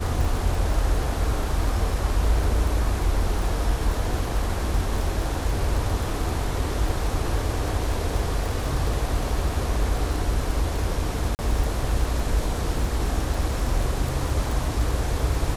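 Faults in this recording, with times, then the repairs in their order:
crackle 27 per s -26 dBFS
11.35–11.39 s: dropout 39 ms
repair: de-click; interpolate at 11.35 s, 39 ms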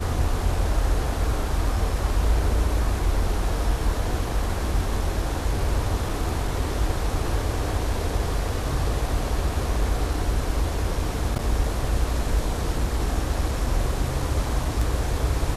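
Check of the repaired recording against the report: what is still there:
nothing left

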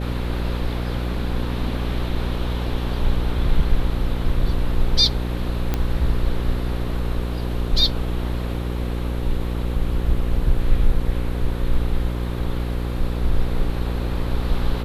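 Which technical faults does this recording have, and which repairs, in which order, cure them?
buzz 60 Hz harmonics 9 -25 dBFS
5.74 s: pop -9 dBFS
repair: de-click; de-hum 60 Hz, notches 9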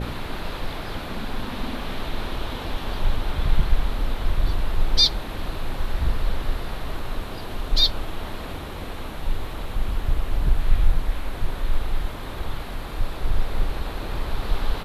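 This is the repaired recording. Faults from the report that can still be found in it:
nothing left

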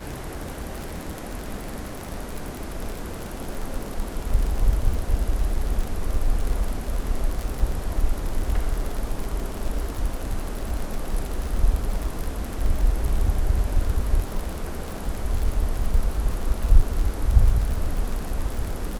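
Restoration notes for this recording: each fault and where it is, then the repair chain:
crackle 51 per s -26 dBFS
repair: de-click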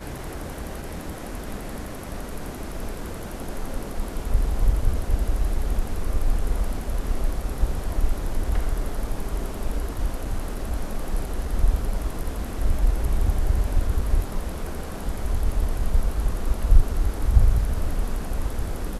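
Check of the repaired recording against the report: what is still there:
nothing left

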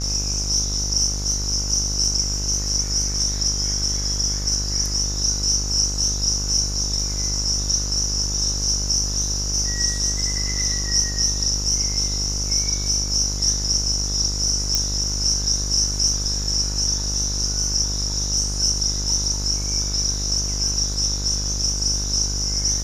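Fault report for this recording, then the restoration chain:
buzz 50 Hz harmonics 31 -27 dBFS
14.75 s: pop -5 dBFS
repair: de-click; de-hum 50 Hz, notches 31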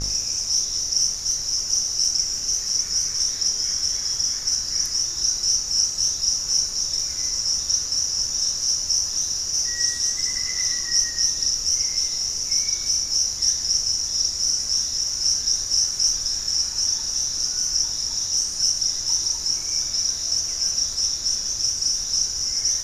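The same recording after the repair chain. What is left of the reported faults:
nothing left

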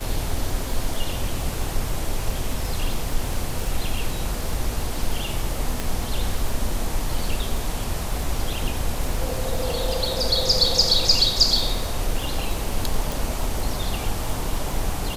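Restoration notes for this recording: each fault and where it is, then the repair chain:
crackle 39 per s -26 dBFS
5.80 s: pop
13.12 s: pop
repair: de-click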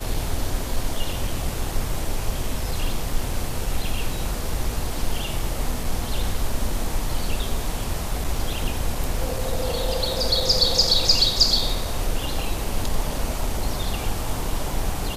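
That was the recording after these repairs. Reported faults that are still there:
5.80 s: pop

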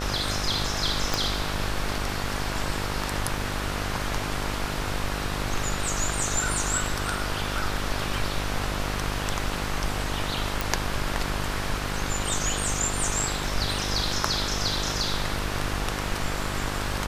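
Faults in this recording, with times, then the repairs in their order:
buzz 50 Hz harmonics 29 -32 dBFS
1.14 s: pop
10.61 s: pop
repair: de-click; de-hum 50 Hz, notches 29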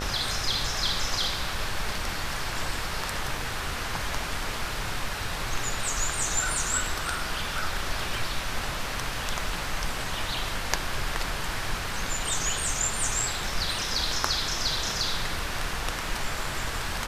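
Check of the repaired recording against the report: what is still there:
1.14 s: pop

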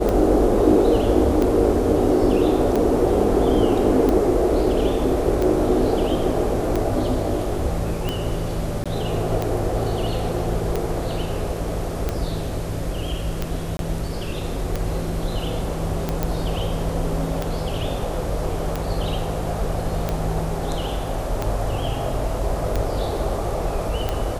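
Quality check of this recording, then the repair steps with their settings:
tick 45 rpm -10 dBFS
8.84–8.86 s: dropout 16 ms
13.77–13.79 s: dropout 22 ms
16.23 s: pop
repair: de-click; interpolate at 8.84 s, 16 ms; interpolate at 13.77 s, 22 ms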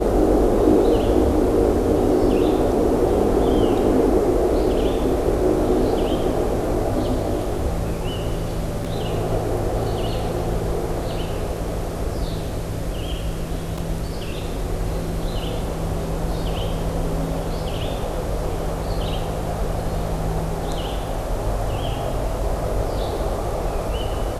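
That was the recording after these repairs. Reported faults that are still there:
nothing left

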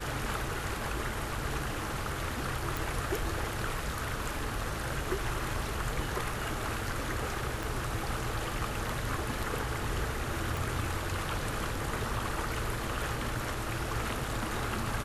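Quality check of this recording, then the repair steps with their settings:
2.77 s: pop
7.63 s: pop
10.57 s: pop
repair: de-click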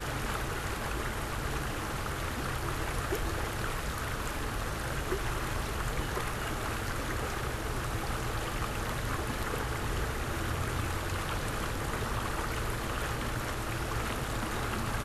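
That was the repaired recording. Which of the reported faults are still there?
7.63 s: pop

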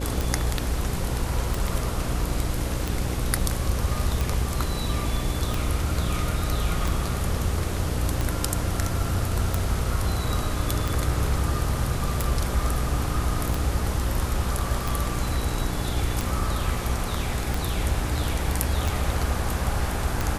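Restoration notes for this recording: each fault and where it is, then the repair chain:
buzz 60 Hz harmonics 9 -30 dBFS
tick 45 rpm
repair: de-click; de-hum 60 Hz, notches 9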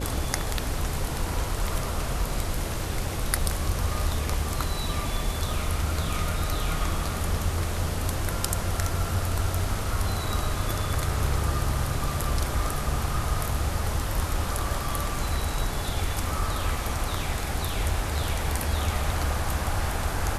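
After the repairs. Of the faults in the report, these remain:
nothing left

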